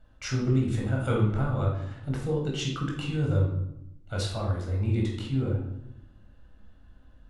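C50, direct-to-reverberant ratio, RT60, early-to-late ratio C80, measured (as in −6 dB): 3.0 dB, −2.0 dB, 0.85 s, 7.0 dB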